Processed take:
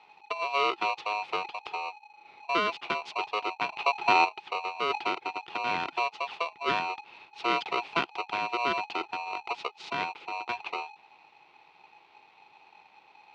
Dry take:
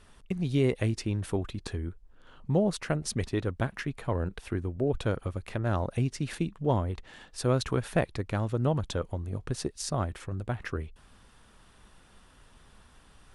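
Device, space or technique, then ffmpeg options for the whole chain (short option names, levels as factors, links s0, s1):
ring modulator pedal into a guitar cabinet: -filter_complex "[0:a]asplit=3[s0][s1][s2];[s0]afade=t=out:st=3.68:d=0.02[s3];[s1]lowshelf=f=410:g=11.5,afade=t=in:st=3.68:d=0.02,afade=t=out:st=4.24:d=0.02[s4];[s2]afade=t=in:st=4.24:d=0.02[s5];[s3][s4][s5]amix=inputs=3:normalize=0,aeval=exprs='val(0)*sgn(sin(2*PI*840*n/s))':c=same,highpass=f=210:p=1,highpass=100,equalizer=f=120:t=q:w=4:g=-5,equalizer=f=230:t=q:w=4:g=-7,equalizer=f=350:t=q:w=4:g=4,equalizer=f=580:t=q:w=4:g=-8,equalizer=f=1700:t=q:w=4:g=-8,equalizer=f=2500:t=q:w=4:g=4,lowpass=f=3800:w=0.5412,lowpass=f=3800:w=1.3066,equalizer=f=310:t=o:w=0.23:g=-4.5"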